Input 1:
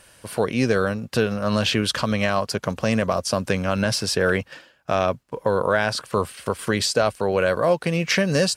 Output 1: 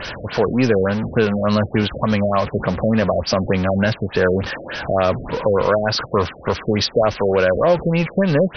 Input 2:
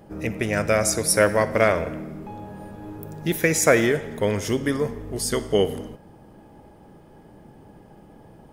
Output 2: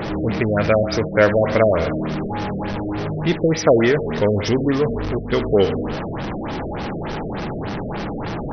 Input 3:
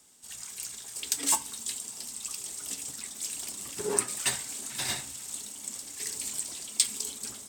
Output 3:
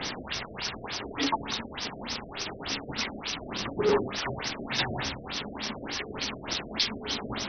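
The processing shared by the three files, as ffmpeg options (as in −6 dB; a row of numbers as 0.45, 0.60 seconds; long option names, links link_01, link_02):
-af "aeval=exprs='val(0)+0.5*0.0708*sgn(val(0))':channel_layout=same,afftfilt=real='re*lt(b*sr/1024,680*pow(6300/680,0.5+0.5*sin(2*PI*3.4*pts/sr)))':imag='im*lt(b*sr/1024,680*pow(6300/680,0.5+0.5*sin(2*PI*3.4*pts/sr)))':win_size=1024:overlap=0.75,volume=2.5dB"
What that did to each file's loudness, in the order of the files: +3.5, +1.5, 0.0 LU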